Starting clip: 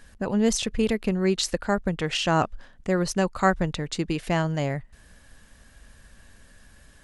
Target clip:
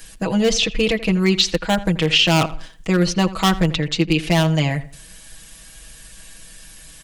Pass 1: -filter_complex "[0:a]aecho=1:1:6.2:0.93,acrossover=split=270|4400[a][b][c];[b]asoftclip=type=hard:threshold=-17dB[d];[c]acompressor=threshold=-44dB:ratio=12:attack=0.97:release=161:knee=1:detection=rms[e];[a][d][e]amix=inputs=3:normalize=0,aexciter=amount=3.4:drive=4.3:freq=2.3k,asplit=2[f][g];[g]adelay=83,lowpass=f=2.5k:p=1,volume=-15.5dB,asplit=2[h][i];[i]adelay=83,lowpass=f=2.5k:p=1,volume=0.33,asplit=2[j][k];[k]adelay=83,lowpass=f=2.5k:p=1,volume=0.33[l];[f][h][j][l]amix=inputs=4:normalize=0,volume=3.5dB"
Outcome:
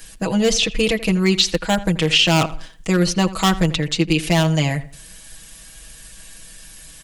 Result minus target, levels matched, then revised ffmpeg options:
compressor: peak gain reduction -11 dB
-filter_complex "[0:a]aecho=1:1:6.2:0.93,acrossover=split=270|4400[a][b][c];[b]asoftclip=type=hard:threshold=-17dB[d];[c]acompressor=threshold=-56dB:ratio=12:attack=0.97:release=161:knee=1:detection=rms[e];[a][d][e]amix=inputs=3:normalize=0,aexciter=amount=3.4:drive=4.3:freq=2.3k,asplit=2[f][g];[g]adelay=83,lowpass=f=2.5k:p=1,volume=-15.5dB,asplit=2[h][i];[i]adelay=83,lowpass=f=2.5k:p=1,volume=0.33,asplit=2[j][k];[k]adelay=83,lowpass=f=2.5k:p=1,volume=0.33[l];[f][h][j][l]amix=inputs=4:normalize=0,volume=3.5dB"

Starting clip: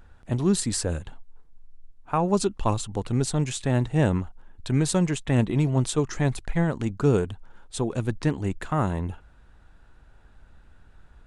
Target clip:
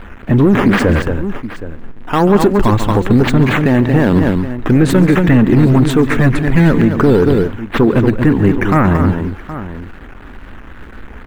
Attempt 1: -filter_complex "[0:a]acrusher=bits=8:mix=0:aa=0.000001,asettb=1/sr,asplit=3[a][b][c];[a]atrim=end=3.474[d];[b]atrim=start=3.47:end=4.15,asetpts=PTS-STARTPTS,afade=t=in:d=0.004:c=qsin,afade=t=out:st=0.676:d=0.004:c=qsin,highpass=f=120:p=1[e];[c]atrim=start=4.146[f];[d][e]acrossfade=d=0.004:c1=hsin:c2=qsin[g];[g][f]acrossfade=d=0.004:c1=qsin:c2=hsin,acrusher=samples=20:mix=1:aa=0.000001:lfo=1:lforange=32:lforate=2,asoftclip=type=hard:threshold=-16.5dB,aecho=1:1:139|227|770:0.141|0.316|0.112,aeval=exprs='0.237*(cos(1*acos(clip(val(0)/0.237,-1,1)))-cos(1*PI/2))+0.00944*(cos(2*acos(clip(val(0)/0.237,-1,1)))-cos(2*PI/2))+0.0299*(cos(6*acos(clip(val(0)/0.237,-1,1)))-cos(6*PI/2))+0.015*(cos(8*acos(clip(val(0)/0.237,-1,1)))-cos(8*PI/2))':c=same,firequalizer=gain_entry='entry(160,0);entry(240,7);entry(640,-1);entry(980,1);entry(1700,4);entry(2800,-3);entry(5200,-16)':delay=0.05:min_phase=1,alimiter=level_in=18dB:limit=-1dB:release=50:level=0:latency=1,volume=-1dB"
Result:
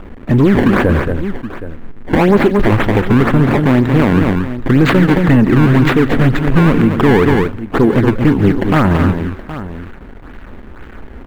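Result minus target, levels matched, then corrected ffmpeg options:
decimation with a swept rate: distortion +8 dB
-filter_complex "[0:a]acrusher=bits=8:mix=0:aa=0.000001,asettb=1/sr,asplit=3[a][b][c];[a]atrim=end=3.474[d];[b]atrim=start=3.47:end=4.15,asetpts=PTS-STARTPTS,afade=t=in:d=0.004:c=qsin,afade=t=out:st=0.676:d=0.004:c=qsin,highpass=f=120:p=1[e];[c]atrim=start=4.146[f];[d][e]acrossfade=d=0.004:c1=hsin:c2=qsin[g];[g][f]acrossfade=d=0.004:c1=qsin:c2=hsin,acrusher=samples=6:mix=1:aa=0.000001:lfo=1:lforange=9.6:lforate=2,asoftclip=type=hard:threshold=-16.5dB,aecho=1:1:139|227|770:0.141|0.316|0.112,aeval=exprs='0.237*(cos(1*acos(clip(val(0)/0.237,-1,1)))-cos(1*PI/2))+0.00944*(cos(2*acos(clip(val(0)/0.237,-1,1)))-cos(2*PI/2))+0.0299*(cos(6*acos(clip(val(0)/0.237,-1,1)))-cos(6*PI/2))+0.015*(cos(8*acos(clip(val(0)/0.237,-1,1)))-cos(8*PI/2))':c=same,firequalizer=gain_entry='entry(160,0);entry(240,7);entry(640,-1);entry(980,1);entry(1700,4);entry(2800,-3);entry(5200,-16)':delay=0.05:min_phase=1,alimiter=level_in=18dB:limit=-1dB:release=50:level=0:latency=1,volume=-1dB"

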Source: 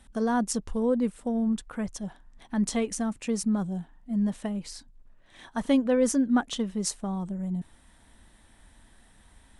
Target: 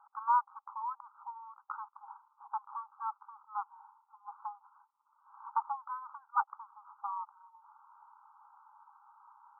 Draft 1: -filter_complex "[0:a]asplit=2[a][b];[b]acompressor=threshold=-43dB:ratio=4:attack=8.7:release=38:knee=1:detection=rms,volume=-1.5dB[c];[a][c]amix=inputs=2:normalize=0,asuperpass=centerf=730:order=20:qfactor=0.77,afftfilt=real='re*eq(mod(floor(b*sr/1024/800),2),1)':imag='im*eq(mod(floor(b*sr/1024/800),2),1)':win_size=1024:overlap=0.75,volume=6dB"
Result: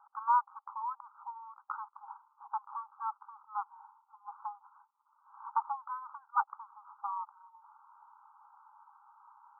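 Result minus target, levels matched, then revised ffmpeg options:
compressor: peak gain reduction -8 dB
-filter_complex "[0:a]asplit=2[a][b];[b]acompressor=threshold=-53.5dB:ratio=4:attack=8.7:release=38:knee=1:detection=rms,volume=-1.5dB[c];[a][c]amix=inputs=2:normalize=0,asuperpass=centerf=730:order=20:qfactor=0.77,afftfilt=real='re*eq(mod(floor(b*sr/1024/800),2),1)':imag='im*eq(mod(floor(b*sr/1024/800),2),1)':win_size=1024:overlap=0.75,volume=6dB"

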